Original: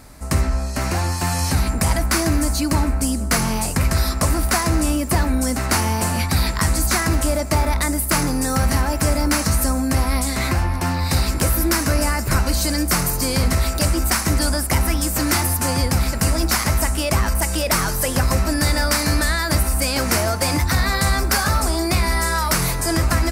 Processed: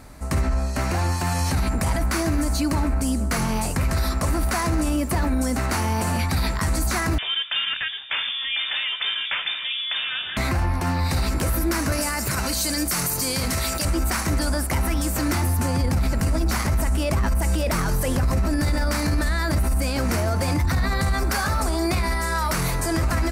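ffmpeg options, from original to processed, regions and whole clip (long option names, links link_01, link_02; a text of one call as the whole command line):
ffmpeg -i in.wav -filter_complex "[0:a]asettb=1/sr,asplit=3[link_01][link_02][link_03];[link_01]atrim=end=7.184[link_04];[link_02]atrim=start=7.18:end=10.37,asetpts=PTS-STARTPTS,afade=type=in:duration=0.004:curve=qsin,afade=type=out:start_time=3.186:duration=0.004:curve=qsin,highpass=160,equalizer=frequency=290:width=5.8:gain=-12,lowpass=frequency=3100:width_type=q:width=0.5098,lowpass=frequency=3100:width_type=q:width=0.6013,lowpass=frequency=3100:width_type=q:width=0.9,lowpass=frequency=3100:width_type=q:width=2.563,afreqshift=-3700[link_05];[link_03]atrim=start=10.366[link_06];[link_04][link_05]acrossfade=duration=0.004:curve1=hsin:curve2=qsin[link_07];[link_07][link_06]acrossfade=duration=0.004:curve1=qsin:curve2=hsin,asettb=1/sr,asplit=3[link_08][link_09][link_10];[link_08]atrim=end=11.924[link_11];[link_09]atrim=start=11.92:end=13.85,asetpts=PTS-STARTPTS,afade=type=in:duration=0.004:curve=qsin,afade=type=out:start_time=1.926:duration=0.004:curve=qsin,highpass=79,highshelf=frequency=2500:gain=10.5,acompressor=threshold=-17dB:ratio=2:attack=3.2:release=140:knee=1:detection=peak[link_12];[link_10]atrim=start=13.846[link_13];[link_11][link_12]acrossfade=duration=0.004:curve1=hsin:curve2=qsin[link_14];[link_14][link_13]acrossfade=duration=0.004:curve1=qsin:curve2=hsin,asettb=1/sr,asplit=3[link_15][link_16][link_17];[link_15]atrim=end=15.284[link_18];[link_16]atrim=start=15.28:end=21.14,asetpts=PTS-STARTPTS,afade=type=in:duration=0.004:curve=qsin,afade=type=out:start_time=5.856:duration=0.004:curve=qsin,asoftclip=type=hard:threshold=-11dB,lowshelf=frequency=380:gain=6.5[link_19];[link_17]atrim=start=21.136[link_20];[link_18][link_19]acrossfade=duration=0.004:curve1=hsin:curve2=qsin[link_21];[link_21][link_20]acrossfade=duration=0.004:curve1=qsin:curve2=hsin,highshelf=frequency=4400:gain=-5.5,bandreject=frequency=5100:width=20,alimiter=limit=-15dB:level=0:latency=1:release=26" out.wav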